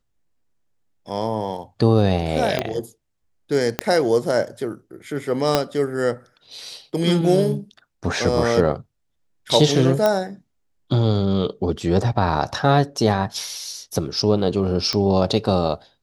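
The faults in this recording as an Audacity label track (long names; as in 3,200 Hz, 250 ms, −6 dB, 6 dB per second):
2.590000	2.590000	click −7 dBFS
3.790000	3.790000	click −4 dBFS
5.550000	5.550000	click −2 dBFS
10.060000	10.060000	click −6 dBFS
14.930000	14.930000	click −9 dBFS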